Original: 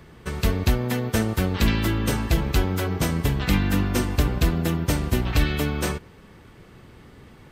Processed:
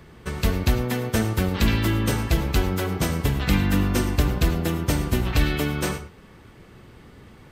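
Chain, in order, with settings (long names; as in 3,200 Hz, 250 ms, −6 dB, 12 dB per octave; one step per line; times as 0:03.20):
reverb whose tail is shaped and stops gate 130 ms rising, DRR 11.5 dB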